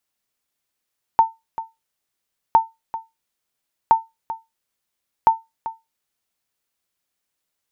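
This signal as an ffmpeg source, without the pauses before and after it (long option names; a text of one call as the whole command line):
ffmpeg -f lavfi -i "aevalsrc='0.596*(sin(2*PI*901*mod(t,1.36))*exp(-6.91*mod(t,1.36)/0.2)+0.188*sin(2*PI*901*max(mod(t,1.36)-0.39,0))*exp(-6.91*max(mod(t,1.36)-0.39,0)/0.2))':duration=5.44:sample_rate=44100" out.wav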